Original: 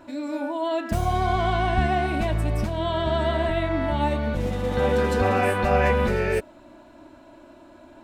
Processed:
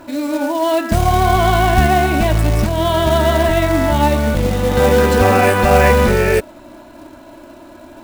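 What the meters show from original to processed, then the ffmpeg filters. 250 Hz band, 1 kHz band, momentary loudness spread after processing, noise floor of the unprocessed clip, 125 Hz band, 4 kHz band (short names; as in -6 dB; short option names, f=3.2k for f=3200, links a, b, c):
+9.5 dB, +9.5 dB, 5 LU, -49 dBFS, +9.5 dB, +10.5 dB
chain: -af "acontrast=58,acrusher=bits=4:mode=log:mix=0:aa=0.000001,volume=3.5dB"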